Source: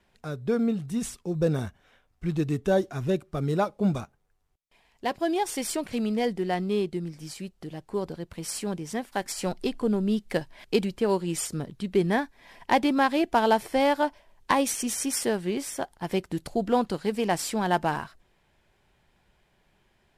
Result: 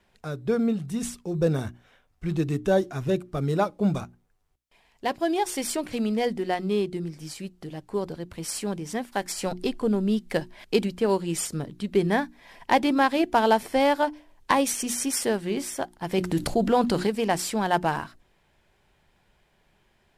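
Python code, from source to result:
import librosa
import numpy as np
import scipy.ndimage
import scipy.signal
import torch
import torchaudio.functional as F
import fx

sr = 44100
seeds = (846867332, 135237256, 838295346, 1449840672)

y = fx.hum_notches(x, sr, base_hz=60, count=6)
y = fx.env_flatten(y, sr, amount_pct=50, at=(16.18, 17.07))
y = y * librosa.db_to_amplitude(1.5)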